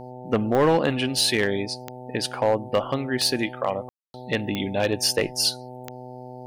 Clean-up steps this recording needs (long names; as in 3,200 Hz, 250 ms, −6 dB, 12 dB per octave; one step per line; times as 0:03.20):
clipped peaks rebuilt −12.5 dBFS
click removal
hum removal 125.7 Hz, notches 7
ambience match 0:03.89–0:04.14